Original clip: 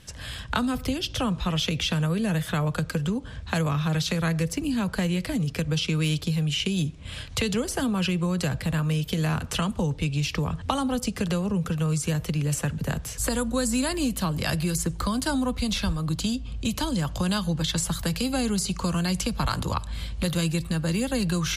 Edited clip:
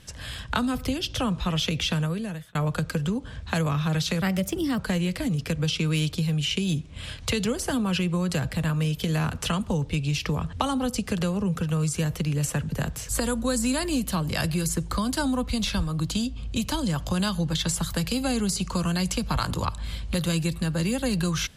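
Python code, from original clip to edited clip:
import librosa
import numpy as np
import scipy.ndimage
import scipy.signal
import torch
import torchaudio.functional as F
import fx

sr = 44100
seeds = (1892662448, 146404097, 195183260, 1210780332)

y = fx.edit(x, sr, fx.fade_out_span(start_s=1.95, length_s=0.6),
    fx.speed_span(start_s=4.22, length_s=0.65, speed=1.16), tone=tone)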